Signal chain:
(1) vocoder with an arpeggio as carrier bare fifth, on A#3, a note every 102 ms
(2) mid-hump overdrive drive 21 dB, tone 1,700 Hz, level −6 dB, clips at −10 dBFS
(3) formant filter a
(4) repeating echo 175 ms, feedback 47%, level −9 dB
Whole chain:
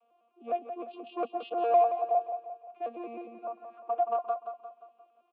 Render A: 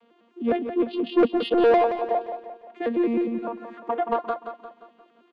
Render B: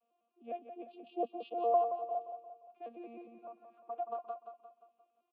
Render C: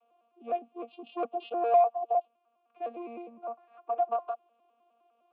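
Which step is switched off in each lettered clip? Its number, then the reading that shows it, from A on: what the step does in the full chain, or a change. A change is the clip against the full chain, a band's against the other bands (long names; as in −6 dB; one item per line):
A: 3, 1 kHz band −14.5 dB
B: 2, change in crest factor +3.0 dB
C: 4, echo-to-direct ratio −8.0 dB to none audible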